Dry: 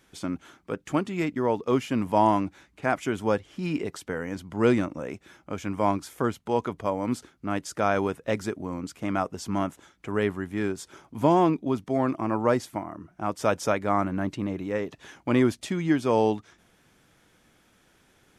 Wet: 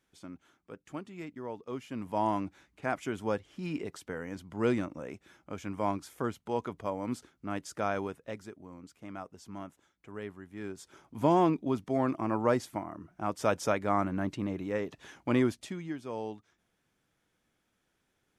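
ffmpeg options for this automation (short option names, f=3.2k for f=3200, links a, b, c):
-af "volume=4.5dB,afade=t=in:st=1.79:d=0.66:silence=0.398107,afade=t=out:st=7.82:d=0.61:silence=0.375837,afade=t=in:st=10.5:d=0.86:silence=0.266073,afade=t=out:st=15.3:d=0.63:silence=0.266073"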